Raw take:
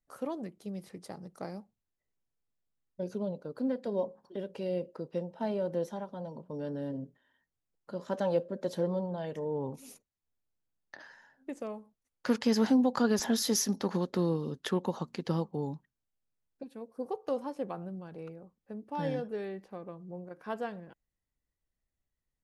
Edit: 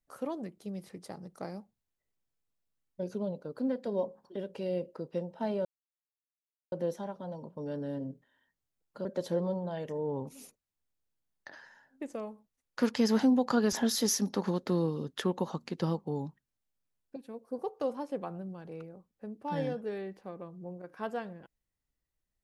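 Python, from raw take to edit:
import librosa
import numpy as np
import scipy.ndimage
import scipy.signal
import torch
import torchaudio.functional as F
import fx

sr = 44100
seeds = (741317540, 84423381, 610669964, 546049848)

y = fx.edit(x, sr, fx.insert_silence(at_s=5.65, length_s=1.07),
    fx.cut(start_s=7.98, length_s=0.54), tone=tone)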